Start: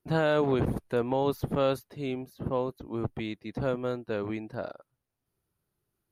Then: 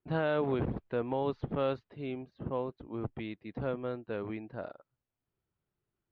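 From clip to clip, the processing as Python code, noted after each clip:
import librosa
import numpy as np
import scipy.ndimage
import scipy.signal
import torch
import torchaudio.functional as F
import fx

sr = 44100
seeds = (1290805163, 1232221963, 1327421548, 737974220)

y = scipy.signal.sosfilt(scipy.signal.butter(4, 3500.0, 'lowpass', fs=sr, output='sos'), x)
y = F.gain(torch.from_numpy(y), -5.0).numpy()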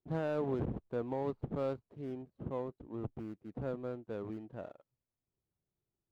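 y = scipy.signal.medfilt(x, 25)
y = fx.high_shelf(y, sr, hz=2100.0, db=-9.5)
y = F.gain(torch.from_numpy(y), -3.0).numpy()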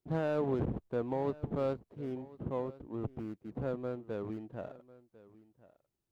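y = x + 10.0 ** (-20.0 / 20.0) * np.pad(x, (int(1048 * sr / 1000.0), 0))[:len(x)]
y = F.gain(torch.from_numpy(y), 2.5).numpy()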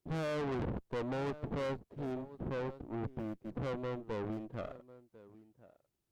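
y = fx.tube_stage(x, sr, drive_db=40.0, bias=0.8)
y = F.gain(torch.from_numpy(y), 6.5).numpy()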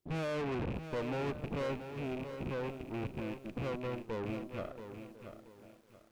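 y = fx.rattle_buzz(x, sr, strikes_db=-43.0, level_db=-38.0)
y = fx.echo_crushed(y, sr, ms=680, feedback_pct=35, bits=10, wet_db=-9.0)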